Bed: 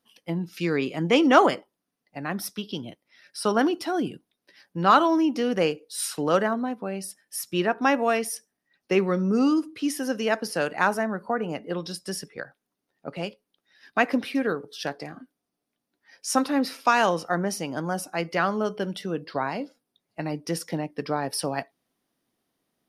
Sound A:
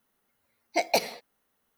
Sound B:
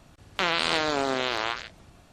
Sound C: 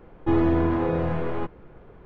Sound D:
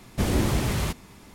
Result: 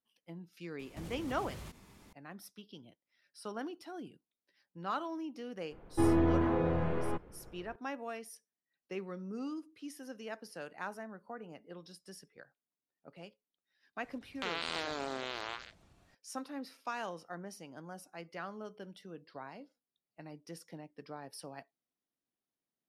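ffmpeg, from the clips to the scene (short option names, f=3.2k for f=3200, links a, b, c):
-filter_complex "[0:a]volume=-19dB[a];[4:a]acompressor=threshold=-33dB:ratio=6:attack=3.2:release=140:knee=1:detection=peak,atrim=end=1.34,asetpts=PTS-STARTPTS,volume=-10dB,afade=t=in:d=0.004:c=hsin,afade=t=out:st=1.336:d=0.004:c=hsin,adelay=790[b];[3:a]atrim=end=2.05,asetpts=PTS-STARTPTS,volume=-6.5dB,afade=t=in:d=0.004:c=hsin,afade=t=out:st=2.046:d=0.004:c=hsin,adelay=5710[c];[2:a]atrim=end=2.12,asetpts=PTS-STARTPTS,volume=-12.5dB,afade=t=in:d=0.004:c=hsin,afade=t=out:st=2.116:d=0.004:c=hsin,adelay=14030[d];[a][b][c][d]amix=inputs=4:normalize=0"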